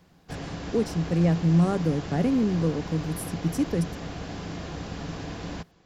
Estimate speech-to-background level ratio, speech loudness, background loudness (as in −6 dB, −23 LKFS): 10.5 dB, −26.0 LKFS, −36.5 LKFS